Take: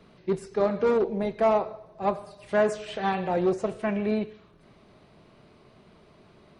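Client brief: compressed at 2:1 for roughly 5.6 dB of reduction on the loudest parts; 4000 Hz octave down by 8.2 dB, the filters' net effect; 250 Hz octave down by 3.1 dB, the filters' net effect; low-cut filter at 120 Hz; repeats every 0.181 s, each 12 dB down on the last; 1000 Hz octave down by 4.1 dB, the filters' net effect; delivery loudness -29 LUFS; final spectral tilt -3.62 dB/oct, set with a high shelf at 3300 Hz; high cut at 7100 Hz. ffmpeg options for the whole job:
-af "highpass=120,lowpass=7.1k,equalizer=f=250:t=o:g=-3.5,equalizer=f=1k:t=o:g=-4.5,highshelf=f=3.3k:g=-8,equalizer=f=4k:t=o:g=-5,acompressor=threshold=-31dB:ratio=2,aecho=1:1:181|362|543:0.251|0.0628|0.0157,volume=5dB"

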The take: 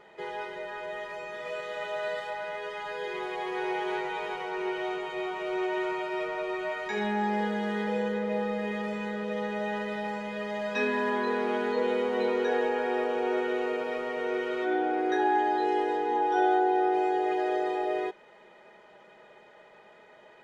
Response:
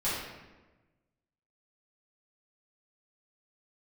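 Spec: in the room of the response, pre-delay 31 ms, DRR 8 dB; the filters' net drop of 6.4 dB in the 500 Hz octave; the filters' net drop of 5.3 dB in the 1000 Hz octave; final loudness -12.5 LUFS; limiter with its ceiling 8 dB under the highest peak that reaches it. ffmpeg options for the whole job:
-filter_complex "[0:a]equalizer=f=500:t=o:g=-8,equalizer=f=1k:t=o:g=-3.5,alimiter=level_in=3dB:limit=-24dB:level=0:latency=1,volume=-3dB,asplit=2[a][b];[1:a]atrim=start_sample=2205,adelay=31[c];[b][c]afir=irnorm=-1:irlink=0,volume=-16.5dB[d];[a][d]amix=inputs=2:normalize=0,volume=23.5dB"

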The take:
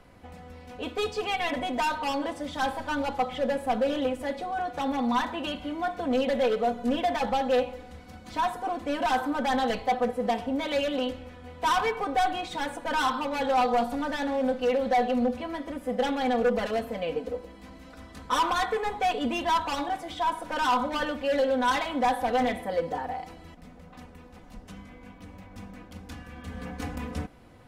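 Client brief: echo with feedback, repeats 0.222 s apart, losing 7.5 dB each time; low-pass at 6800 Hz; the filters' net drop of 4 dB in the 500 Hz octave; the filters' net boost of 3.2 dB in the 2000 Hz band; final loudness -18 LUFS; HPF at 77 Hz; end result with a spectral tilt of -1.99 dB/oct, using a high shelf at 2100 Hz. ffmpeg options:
-af "highpass=77,lowpass=6.8k,equalizer=f=500:t=o:g=-4.5,equalizer=f=2k:t=o:g=7.5,highshelf=f=2.1k:g=-5,aecho=1:1:222|444|666|888|1110:0.422|0.177|0.0744|0.0312|0.0131,volume=10.5dB"

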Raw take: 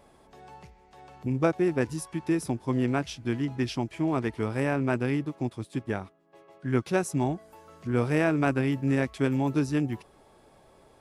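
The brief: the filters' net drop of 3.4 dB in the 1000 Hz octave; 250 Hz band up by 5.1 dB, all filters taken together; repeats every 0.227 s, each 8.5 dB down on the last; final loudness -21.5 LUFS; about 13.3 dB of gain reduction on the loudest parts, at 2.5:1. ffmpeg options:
-af "equalizer=f=250:t=o:g=6.5,equalizer=f=1k:t=o:g=-5.5,acompressor=threshold=-38dB:ratio=2.5,aecho=1:1:227|454|681|908:0.376|0.143|0.0543|0.0206,volume=15dB"

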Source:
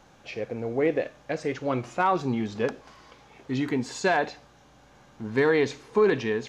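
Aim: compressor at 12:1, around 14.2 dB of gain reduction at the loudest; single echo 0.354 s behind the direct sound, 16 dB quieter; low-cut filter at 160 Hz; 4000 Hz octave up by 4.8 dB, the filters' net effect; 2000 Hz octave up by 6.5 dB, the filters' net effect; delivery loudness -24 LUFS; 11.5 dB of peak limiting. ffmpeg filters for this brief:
-af "highpass=160,equalizer=f=2k:t=o:g=7.5,equalizer=f=4k:t=o:g=3.5,acompressor=threshold=-30dB:ratio=12,alimiter=level_in=3dB:limit=-24dB:level=0:latency=1,volume=-3dB,aecho=1:1:354:0.158,volume=14.5dB"

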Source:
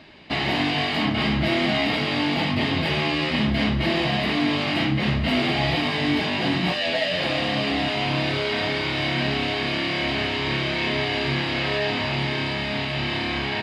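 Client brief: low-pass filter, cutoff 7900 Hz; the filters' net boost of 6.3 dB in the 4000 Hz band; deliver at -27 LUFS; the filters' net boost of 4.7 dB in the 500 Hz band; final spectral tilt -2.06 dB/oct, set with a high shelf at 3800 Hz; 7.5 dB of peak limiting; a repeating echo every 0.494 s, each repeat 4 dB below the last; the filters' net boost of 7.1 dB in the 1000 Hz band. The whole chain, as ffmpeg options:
-af "lowpass=7.9k,equalizer=f=500:t=o:g=3.5,equalizer=f=1k:t=o:g=7.5,highshelf=f=3.8k:g=3.5,equalizer=f=4k:t=o:g=6,alimiter=limit=-12dB:level=0:latency=1,aecho=1:1:494|988|1482|1976|2470|2964|3458|3952|4446:0.631|0.398|0.25|0.158|0.0994|0.0626|0.0394|0.0249|0.0157,volume=-9dB"

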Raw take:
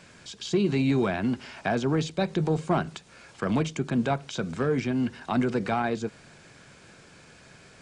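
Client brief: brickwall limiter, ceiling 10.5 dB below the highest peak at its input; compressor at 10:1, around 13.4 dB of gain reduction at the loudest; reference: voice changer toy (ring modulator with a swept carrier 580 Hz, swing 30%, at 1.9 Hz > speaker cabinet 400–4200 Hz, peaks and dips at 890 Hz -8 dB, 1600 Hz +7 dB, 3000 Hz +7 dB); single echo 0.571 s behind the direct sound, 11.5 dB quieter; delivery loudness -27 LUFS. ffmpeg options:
-af "acompressor=threshold=-34dB:ratio=10,alimiter=level_in=6.5dB:limit=-24dB:level=0:latency=1,volume=-6.5dB,aecho=1:1:571:0.266,aeval=exprs='val(0)*sin(2*PI*580*n/s+580*0.3/1.9*sin(2*PI*1.9*n/s))':c=same,highpass=400,equalizer=f=890:t=q:w=4:g=-8,equalizer=f=1.6k:t=q:w=4:g=7,equalizer=f=3k:t=q:w=4:g=7,lowpass=f=4.2k:w=0.5412,lowpass=f=4.2k:w=1.3066,volume=19dB"

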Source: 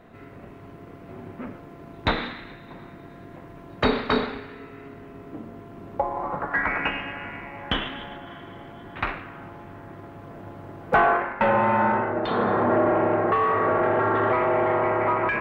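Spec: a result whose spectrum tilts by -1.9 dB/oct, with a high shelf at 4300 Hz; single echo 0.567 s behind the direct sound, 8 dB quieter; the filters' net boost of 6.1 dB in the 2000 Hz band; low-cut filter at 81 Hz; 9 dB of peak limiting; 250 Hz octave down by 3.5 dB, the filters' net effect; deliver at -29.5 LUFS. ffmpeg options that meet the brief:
-af "highpass=81,equalizer=f=250:t=o:g=-5,equalizer=f=2k:t=o:g=6.5,highshelf=f=4.3k:g=7.5,alimiter=limit=-14dB:level=0:latency=1,aecho=1:1:567:0.398,volume=-5.5dB"

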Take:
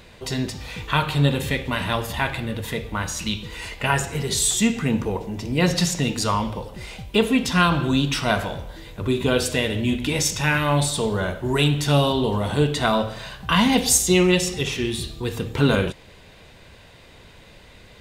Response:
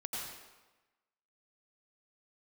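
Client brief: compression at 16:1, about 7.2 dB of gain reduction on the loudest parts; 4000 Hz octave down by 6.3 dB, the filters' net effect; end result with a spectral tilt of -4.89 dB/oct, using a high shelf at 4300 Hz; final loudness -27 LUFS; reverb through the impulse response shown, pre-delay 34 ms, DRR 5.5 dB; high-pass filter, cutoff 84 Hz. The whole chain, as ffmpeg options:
-filter_complex "[0:a]highpass=84,equalizer=f=4k:t=o:g=-6.5,highshelf=f=4.3k:g=-3.5,acompressor=threshold=-20dB:ratio=16,asplit=2[a][b];[1:a]atrim=start_sample=2205,adelay=34[c];[b][c]afir=irnorm=-1:irlink=0,volume=-7dB[d];[a][d]amix=inputs=2:normalize=0,volume=-1.5dB"

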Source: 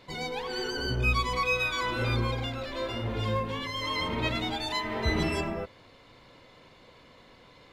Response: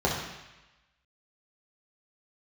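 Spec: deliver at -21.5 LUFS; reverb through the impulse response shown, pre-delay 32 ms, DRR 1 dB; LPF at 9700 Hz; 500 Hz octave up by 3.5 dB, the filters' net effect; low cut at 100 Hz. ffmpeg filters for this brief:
-filter_complex "[0:a]highpass=100,lowpass=9.7k,equalizer=f=500:t=o:g=4,asplit=2[a][b];[1:a]atrim=start_sample=2205,adelay=32[c];[b][c]afir=irnorm=-1:irlink=0,volume=-14.5dB[d];[a][d]amix=inputs=2:normalize=0,volume=4dB"

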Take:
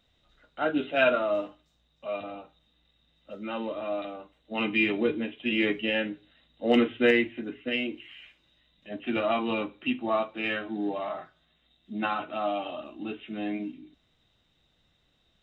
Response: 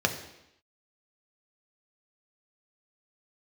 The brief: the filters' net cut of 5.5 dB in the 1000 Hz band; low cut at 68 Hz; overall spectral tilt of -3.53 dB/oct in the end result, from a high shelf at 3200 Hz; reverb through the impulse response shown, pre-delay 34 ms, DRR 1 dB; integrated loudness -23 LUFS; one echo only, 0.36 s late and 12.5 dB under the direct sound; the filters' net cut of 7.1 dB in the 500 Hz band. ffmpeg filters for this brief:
-filter_complex "[0:a]highpass=68,equalizer=f=500:t=o:g=-8,equalizer=f=1k:t=o:g=-3.5,highshelf=f=3.2k:g=-9,aecho=1:1:360:0.237,asplit=2[a][b];[1:a]atrim=start_sample=2205,adelay=34[c];[b][c]afir=irnorm=-1:irlink=0,volume=-12.5dB[d];[a][d]amix=inputs=2:normalize=0,volume=7dB"

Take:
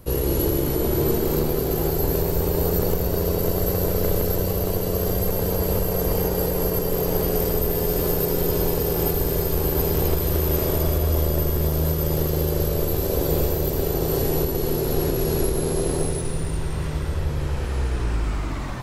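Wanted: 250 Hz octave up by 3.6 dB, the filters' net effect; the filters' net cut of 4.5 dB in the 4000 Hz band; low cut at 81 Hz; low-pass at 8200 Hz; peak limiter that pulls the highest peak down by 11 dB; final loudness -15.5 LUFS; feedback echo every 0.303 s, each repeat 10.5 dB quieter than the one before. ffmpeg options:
-af "highpass=81,lowpass=8.2k,equalizer=f=250:t=o:g=6,equalizer=f=4k:t=o:g=-5.5,alimiter=limit=-18.5dB:level=0:latency=1,aecho=1:1:303|606|909:0.299|0.0896|0.0269,volume=12dB"

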